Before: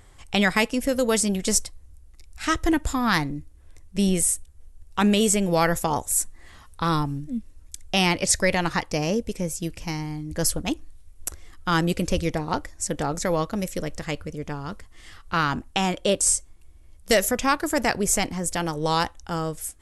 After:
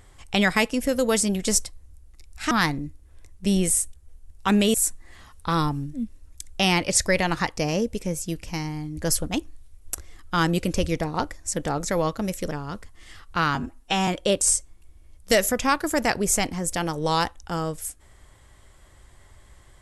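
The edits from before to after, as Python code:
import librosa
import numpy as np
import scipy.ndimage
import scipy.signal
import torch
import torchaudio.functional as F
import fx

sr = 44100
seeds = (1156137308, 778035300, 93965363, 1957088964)

y = fx.edit(x, sr, fx.cut(start_s=2.51, length_s=0.52),
    fx.cut(start_s=5.26, length_s=0.82),
    fx.cut(start_s=13.85, length_s=0.63),
    fx.stretch_span(start_s=15.52, length_s=0.35, factor=1.5), tone=tone)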